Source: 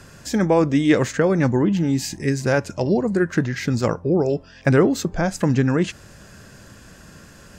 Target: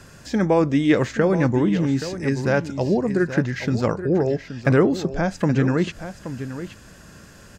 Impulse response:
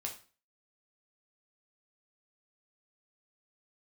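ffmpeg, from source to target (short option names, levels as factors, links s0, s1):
-filter_complex "[0:a]acrossover=split=5100[s0][s1];[s1]acompressor=threshold=0.00447:ratio=4:attack=1:release=60[s2];[s0][s2]amix=inputs=2:normalize=0,aecho=1:1:825:0.266,volume=0.891"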